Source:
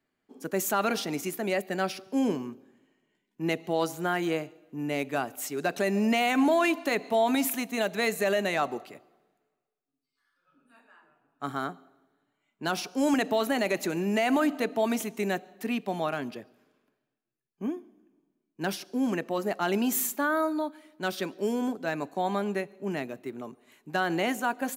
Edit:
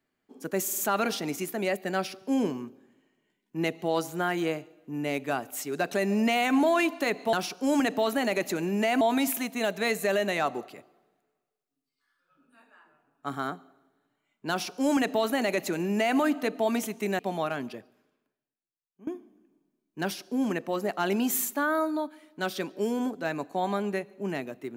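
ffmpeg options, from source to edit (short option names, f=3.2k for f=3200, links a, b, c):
-filter_complex "[0:a]asplit=8[a][b][c][d][e][f][g][h];[a]atrim=end=0.682[i];[b]atrim=start=0.628:end=0.682[j];[c]atrim=start=0.628:end=0.682[k];[d]atrim=start=0.628:end=7.182[l];[e]atrim=start=12.668:end=14.352[m];[f]atrim=start=7.178:end=15.362[n];[g]atrim=start=15.808:end=17.69,asetpts=PTS-STARTPTS,afade=t=out:st=0.582:d=1.3:c=qua:silence=0.112202[o];[h]atrim=start=17.69,asetpts=PTS-STARTPTS,afade=t=in:d=0.004:c=hsin:silence=0.112202[p];[i][j]acrossfade=d=0.004:c1=hsin:c2=hsin[q];[q][k]acrossfade=d=0.004:c1=hsin:c2=hsin[r];[r][l]acrossfade=d=0.004:c1=hsin:c2=hsin[s];[s][m]acrossfade=d=0.004:c1=hsin:c2=hsin[t];[t][n]acrossfade=d=0.004:c1=hsin:c2=hsin[u];[o][p]concat=n=2:v=0:a=1[v];[u][v]acrossfade=d=0.004:c1=hsin:c2=hsin"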